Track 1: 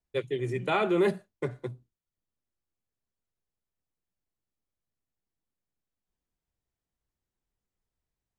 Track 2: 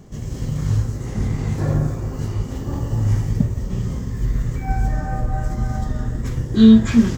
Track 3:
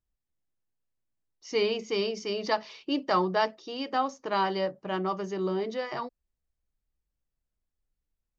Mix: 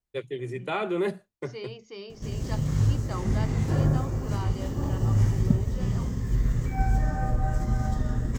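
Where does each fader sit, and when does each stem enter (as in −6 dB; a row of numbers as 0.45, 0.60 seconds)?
−2.5, −3.5, −12.5 decibels; 0.00, 2.10, 0.00 seconds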